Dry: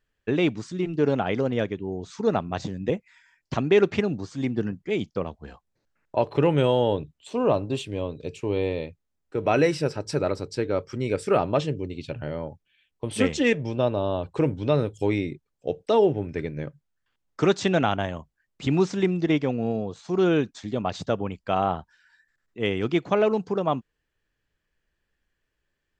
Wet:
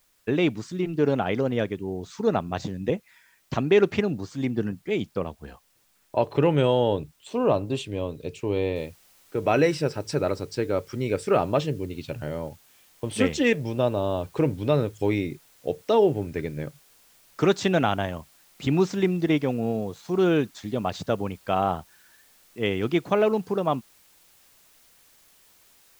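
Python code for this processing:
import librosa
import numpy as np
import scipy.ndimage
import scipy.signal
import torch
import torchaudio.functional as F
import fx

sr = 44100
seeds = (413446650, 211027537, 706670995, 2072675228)

y = fx.noise_floor_step(x, sr, seeds[0], at_s=8.76, before_db=-66, after_db=-58, tilt_db=0.0)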